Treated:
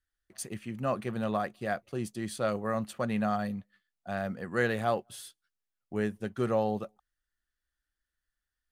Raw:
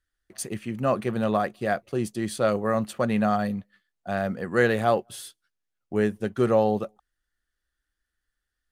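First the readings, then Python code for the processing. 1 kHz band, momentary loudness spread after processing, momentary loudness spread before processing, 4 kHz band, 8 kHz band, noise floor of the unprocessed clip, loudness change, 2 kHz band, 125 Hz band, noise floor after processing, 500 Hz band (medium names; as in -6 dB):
-6.5 dB, 13 LU, 14 LU, -5.5 dB, -5.5 dB, -83 dBFS, -7.0 dB, -5.5 dB, -6.0 dB, under -85 dBFS, -7.5 dB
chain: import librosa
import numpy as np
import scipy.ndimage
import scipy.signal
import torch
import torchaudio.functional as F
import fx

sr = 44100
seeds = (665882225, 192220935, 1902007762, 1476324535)

y = fx.peak_eq(x, sr, hz=410.0, db=-3.0, octaves=1.2)
y = y * 10.0 ** (-5.5 / 20.0)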